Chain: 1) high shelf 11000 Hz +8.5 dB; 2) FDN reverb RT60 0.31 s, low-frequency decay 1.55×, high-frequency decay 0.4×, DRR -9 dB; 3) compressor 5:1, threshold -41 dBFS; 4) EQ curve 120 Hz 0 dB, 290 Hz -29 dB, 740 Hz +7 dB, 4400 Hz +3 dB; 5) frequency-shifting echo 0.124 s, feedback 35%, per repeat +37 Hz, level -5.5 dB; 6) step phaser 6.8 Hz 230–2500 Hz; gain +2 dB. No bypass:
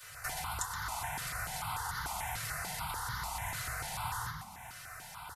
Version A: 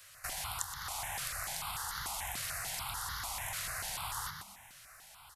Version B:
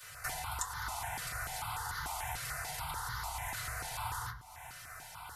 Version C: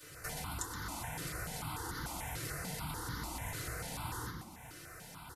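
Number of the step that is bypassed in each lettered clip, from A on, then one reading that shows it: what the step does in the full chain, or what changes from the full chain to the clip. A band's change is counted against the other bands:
2, momentary loudness spread change +5 LU; 5, crest factor change +1.5 dB; 4, 250 Hz band +10.5 dB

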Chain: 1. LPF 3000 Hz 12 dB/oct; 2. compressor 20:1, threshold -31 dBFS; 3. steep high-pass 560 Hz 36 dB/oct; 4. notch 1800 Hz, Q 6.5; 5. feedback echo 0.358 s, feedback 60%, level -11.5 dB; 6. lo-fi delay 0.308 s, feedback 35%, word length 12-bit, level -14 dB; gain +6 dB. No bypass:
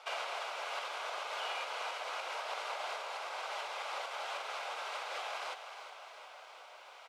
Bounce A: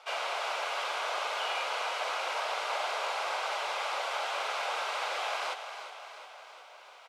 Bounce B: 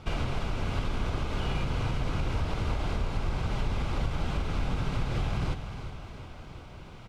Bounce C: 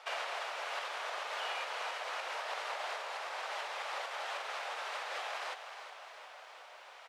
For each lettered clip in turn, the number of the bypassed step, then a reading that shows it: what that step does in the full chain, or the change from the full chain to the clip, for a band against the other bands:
2, mean gain reduction 5.5 dB; 3, 500 Hz band +5.0 dB; 4, 2 kHz band +1.5 dB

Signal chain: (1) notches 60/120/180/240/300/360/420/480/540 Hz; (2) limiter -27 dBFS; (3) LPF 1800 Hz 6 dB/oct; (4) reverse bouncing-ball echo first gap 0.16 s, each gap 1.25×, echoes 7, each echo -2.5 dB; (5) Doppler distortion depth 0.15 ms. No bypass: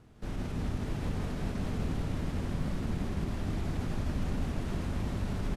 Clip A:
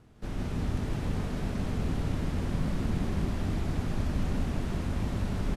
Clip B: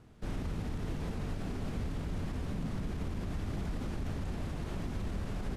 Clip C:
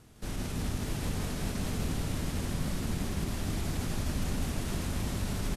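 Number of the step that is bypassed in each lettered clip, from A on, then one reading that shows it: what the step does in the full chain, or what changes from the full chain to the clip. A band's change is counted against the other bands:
2, mean gain reduction 2.5 dB; 4, crest factor change -4.5 dB; 3, 8 kHz band +11.5 dB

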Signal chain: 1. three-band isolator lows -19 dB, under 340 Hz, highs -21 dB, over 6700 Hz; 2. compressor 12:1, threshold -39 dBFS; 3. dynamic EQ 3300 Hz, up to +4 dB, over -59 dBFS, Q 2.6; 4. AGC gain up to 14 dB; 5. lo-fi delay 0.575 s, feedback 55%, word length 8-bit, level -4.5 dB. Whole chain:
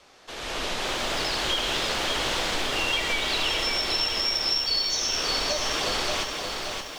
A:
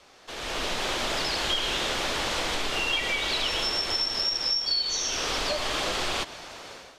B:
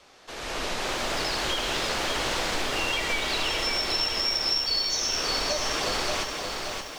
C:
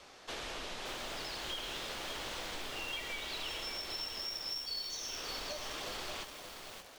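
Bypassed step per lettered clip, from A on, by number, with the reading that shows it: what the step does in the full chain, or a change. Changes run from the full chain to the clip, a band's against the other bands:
5, loudness change -1.5 LU; 3, 4 kHz band -1.5 dB; 4, momentary loudness spread change -2 LU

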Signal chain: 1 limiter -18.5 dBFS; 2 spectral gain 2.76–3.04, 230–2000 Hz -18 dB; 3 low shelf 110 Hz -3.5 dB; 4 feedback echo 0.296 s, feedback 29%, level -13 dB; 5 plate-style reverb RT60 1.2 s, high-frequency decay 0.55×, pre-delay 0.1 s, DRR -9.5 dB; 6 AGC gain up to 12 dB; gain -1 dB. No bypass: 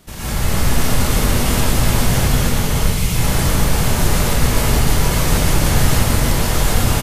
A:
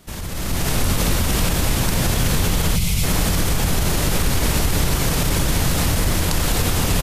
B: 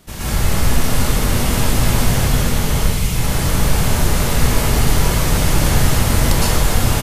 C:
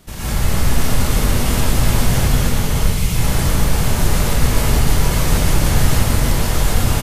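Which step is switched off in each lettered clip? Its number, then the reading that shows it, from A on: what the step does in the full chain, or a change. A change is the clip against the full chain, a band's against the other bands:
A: 5, 4 kHz band +2.0 dB; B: 1, mean gain reduction 3.0 dB; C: 3, 125 Hz band +2.0 dB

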